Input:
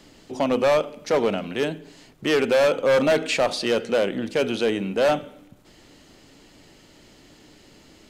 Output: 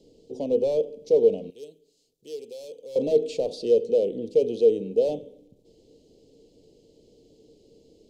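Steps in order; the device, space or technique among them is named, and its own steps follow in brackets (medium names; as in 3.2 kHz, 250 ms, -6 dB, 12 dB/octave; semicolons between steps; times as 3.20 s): Chebyshev band-stop 490–4300 Hz, order 2; inside a helmet (treble shelf 5.4 kHz -10 dB; small resonant body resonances 460/1500 Hz, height 15 dB, ringing for 50 ms); 1.50–2.96 s: pre-emphasis filter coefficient 0.9; trim -7 dB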